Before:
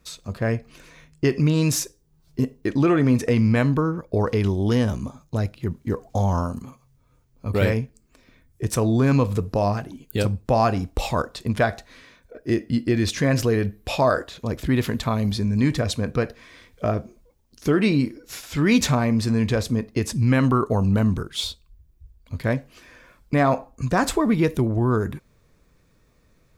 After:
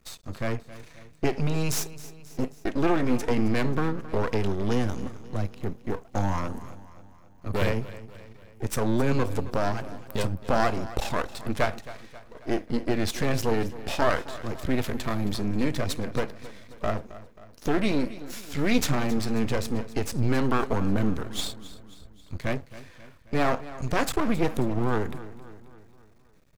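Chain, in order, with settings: half-wave rectifier; feedback delay 268 ms, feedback 53%, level -16.5 dB

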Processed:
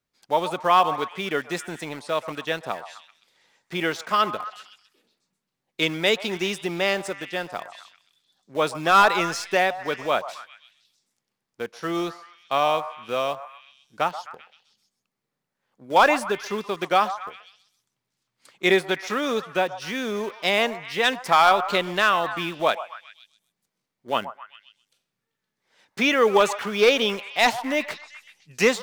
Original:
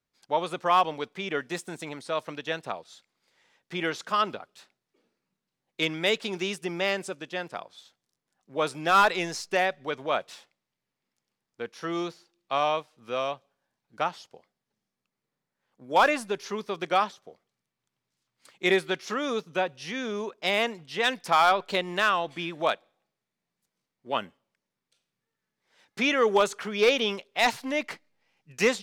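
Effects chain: in parallel at -11.5 dB: bit crusher 6-bit; on the sum: repeats whose band climbs or falls 129 ms, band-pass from 900 Hz, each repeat 0.7 oct, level -10 dB; trim +2 dB

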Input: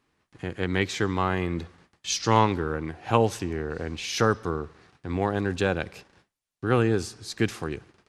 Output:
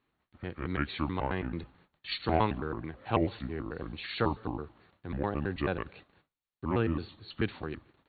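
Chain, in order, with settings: pitch shift switched off and on -5.5 st, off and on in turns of 109 ms; brick-wall FIR low-pass 4.5 kHz; trim -6 dB

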